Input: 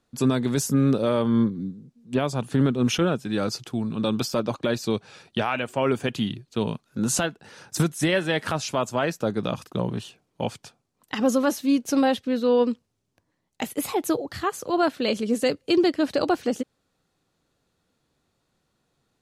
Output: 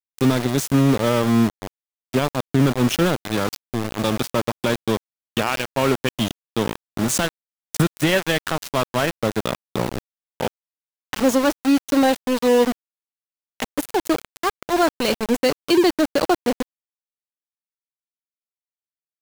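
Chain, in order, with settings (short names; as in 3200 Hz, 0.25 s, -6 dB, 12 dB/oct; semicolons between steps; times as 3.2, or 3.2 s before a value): sample gate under -24 dBFS; gain +4 dB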